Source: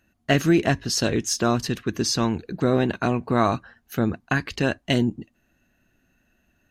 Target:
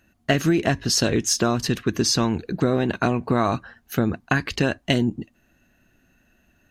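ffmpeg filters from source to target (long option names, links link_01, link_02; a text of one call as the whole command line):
ffmpeg -i in.wav -af "acompressor=threshold=-20dB:ratio=6,volume=4.5dB" out.wav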